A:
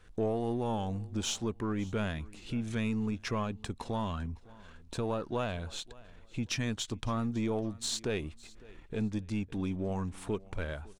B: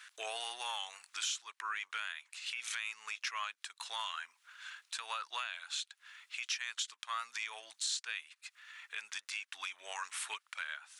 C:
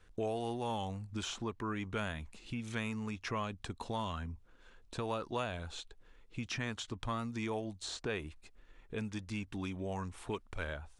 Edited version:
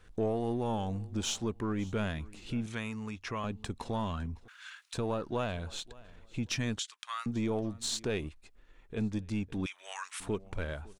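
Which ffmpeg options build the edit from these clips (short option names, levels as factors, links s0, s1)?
-filter_complex "[2:a]asplit=2[s0][s1];[1:a]asplit=3[s2][s3][s4];[0:a]asplit=6[s5][s6][s7][s8][s9][s10];[s5]atrim=end=2.662[s11];[s0]atrim=start=2.658:end=3.442[s12];[s6]atrim=start=3.438:end=4.482[s13];[s2]atrim=start=4.478:end=4.942[s14];[s7]atrim=start=4.938:end=6.792[s15];[s3]atrim=start=6.788:end=7.262[s16];[s8]atrim=start=7.258:end=8.292[s17];[s1]atrim=start=8.288:end=8.972[s18];[s9]atrim=start=8.968:end=9.662[s19];[s4]atrim=start=9.658:end=10.202[s20];[s10]atrim=start=10.198[s21];[s11][s12]acrossfade=d=0.004:c1=hsin:c2=hsin[s22];[s22][s13]acrossfade=d=0.004:c1=hsin:c2=hsin[s23];[s23][s14]acrossfade=d=0.004:c1=hsin:c2=hsin[s24];[s24][s15]acrossfade=d=0.004:c1=hsin:c2=hsin[s25];[s25][s16]acrossfade=d=0.004:c1=hsin:c2=hsin[s26];[s26][s17]acrossfade=d=0.004:c1=hsin:c2=hsin[s27];[s27][s18]acrossfade=d=0.004:c1=hsin:c2=hsin[s28];[s28][s19]acrossfade=d=0.004:c1=hsin:c2=hsin[s29];[s29][s20]acrossfade=d=0.004:c1=hsin:c2=hsin[s30];[s30][s21]acrossfade=d=0.004:c1=hsin:c2=hsin"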